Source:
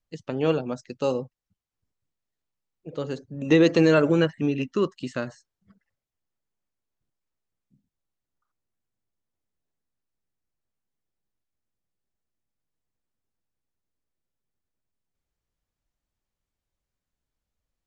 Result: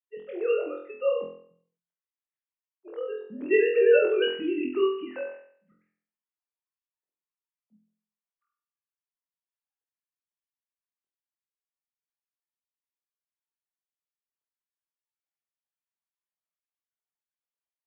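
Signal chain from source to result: sine-wave speech; flutter echo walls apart 4 m, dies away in 0.56 s; gain -5.5 dB

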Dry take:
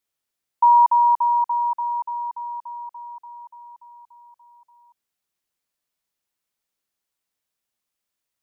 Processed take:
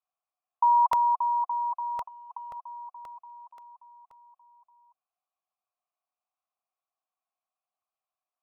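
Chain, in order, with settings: bell 1000 Hz +14.5 dB 1.9 oct; 2.02–2.57 negative-ratio compressor -19 dBFS, ratio -0.5; 3.09–3.67 crackle 36/s -> 12/s -41 dBFS; vowel filter a; crackling interface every 0.53 s, samples 64, repeat, from 0.93; gain -4.5 dB

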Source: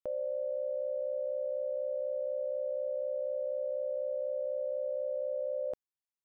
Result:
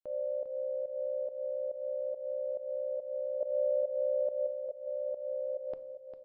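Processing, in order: 3.4–4.47 comb 3.4 ms, depth 99%; pump 140 bpm, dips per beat 1, -18 dB, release 0.183 s; feedback echo 0.401 s, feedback 54%, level -9 dB; shoebox room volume 610 m³, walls furnished, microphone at 0.41 m; MP3 40 kbps 12000 Hz

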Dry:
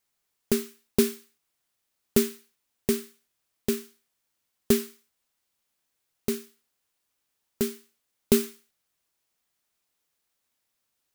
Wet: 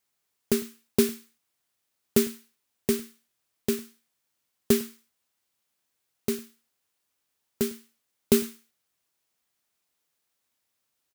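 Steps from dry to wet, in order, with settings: HPF 59 Hz; on a send: echo 0.104 s -21.5 dB

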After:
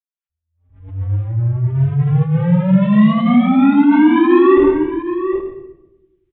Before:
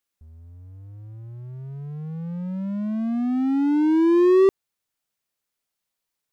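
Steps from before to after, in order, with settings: 2.73–3.67 zero-crossing step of -35.5 dBFS; gate with hold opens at -38 dBFS; bell 240 Hz -11.5 dB 2.5 oct; compressor 6:1, threshold -31 dBFS, peak gain reduction 10 dB; 1.16–1.62 air absorption 440 m; outdoor echo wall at 130 m, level -11 dB; reverb RT60 0.95 s, pre-delay 76 ms; downsampling 8000 Hz; maximiser +18 dB; attack slew limiter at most 110 dB/s; gain -2 dB

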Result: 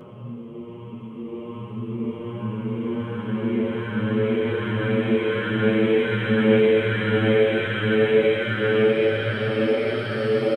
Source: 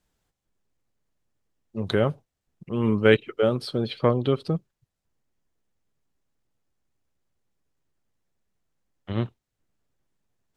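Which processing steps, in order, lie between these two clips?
Paulstretch 11×, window 1.00 s, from 2.43; endless flanger 8.1 ms +1.3 Hz; gain +3 dB

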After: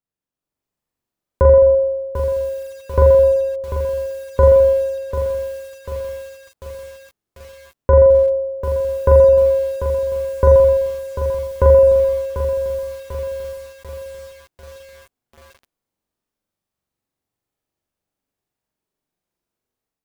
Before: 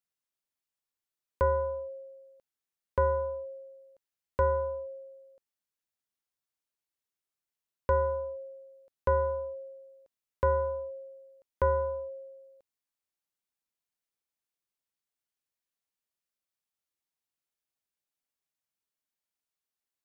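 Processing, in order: tilt shelf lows +8 dB; AGC gain up to 8 dB; on a send: flutter echo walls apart 7.3 m, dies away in 0.88 s; on the sum: lo-fi delay 0.743 s, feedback 55%, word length 6-bit, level -9 dB

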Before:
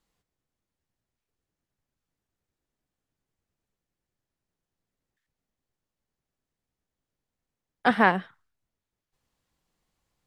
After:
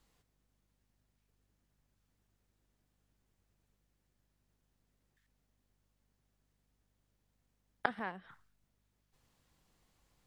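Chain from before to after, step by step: flipped gate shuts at -18 dBFS, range -25 dB; hum 50 Hz, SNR 28 dB; gain +4 dB

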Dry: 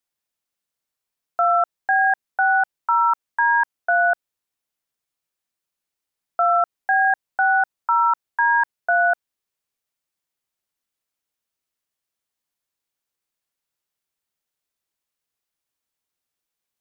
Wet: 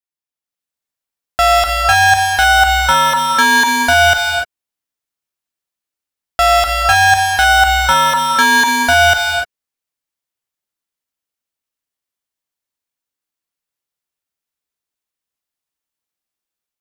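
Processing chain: AGC gain up to 7.5 dB; in parallel at +1.5 dB: limiter -14 dBFS, peak gain reduction 10 dB; on the sum: sample leveller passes 5; non-linear reverb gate 0.32 s rising, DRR 2.5 dB; gain -7.5 dB

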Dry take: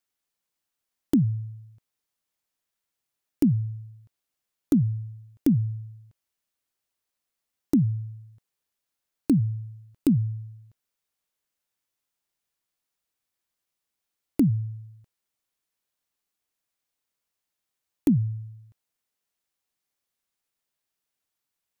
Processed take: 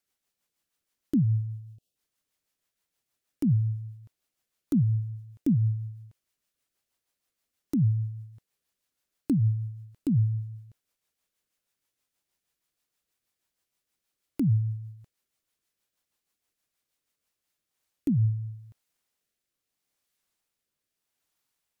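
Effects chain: spectral delete 1.25–1.96, 790–2500 Hz; limiter -22.5 dBFS, peak gain reduction 11 dB; rotary speaker horn 6.3 Hz, later 0.8 Hz, at 17.07; gain +5 dB

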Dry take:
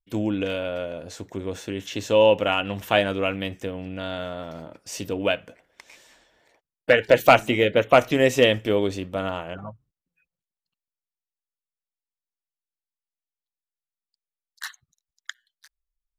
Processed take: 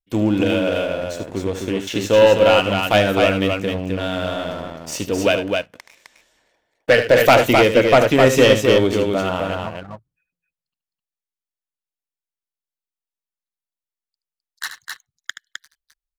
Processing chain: sample leveller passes 2; on a send: loudspeakers at several distances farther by 26 m -10 dB, 89 m -4 dB; on the sum: gain -1 dB

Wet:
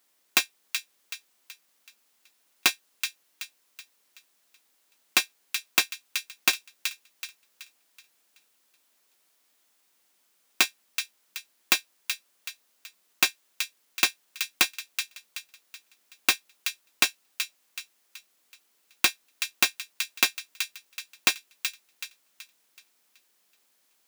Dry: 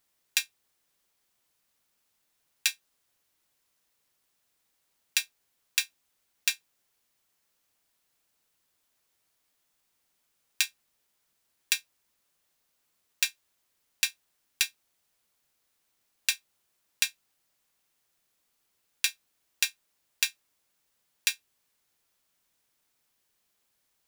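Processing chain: tracing distortion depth 0.29 ms; HPF 200 Hz 24 dB/oct; on a send: thin delay 0.377 s, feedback 40%, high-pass 1800 Hz, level -7.5 dB; on the sum: gain +6 dB

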